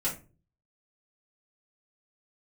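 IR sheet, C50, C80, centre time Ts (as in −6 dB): 9.5 dB, 16.0 dB, 21 ms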